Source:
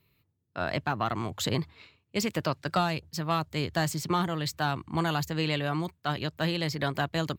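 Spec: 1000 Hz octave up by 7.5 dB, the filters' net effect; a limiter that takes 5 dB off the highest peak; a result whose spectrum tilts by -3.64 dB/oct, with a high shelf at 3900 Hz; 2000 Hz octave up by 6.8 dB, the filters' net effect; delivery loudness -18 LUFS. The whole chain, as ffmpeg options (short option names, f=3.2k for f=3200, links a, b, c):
-af "equalizer=f=1k:t=o:g=8.5,equalizer=f=2k:t=o:g=7,highshelf=f=3.9k:g=-6,volume=9.5dB,alimiter=limit=-3.5dB:level=0:latency=1"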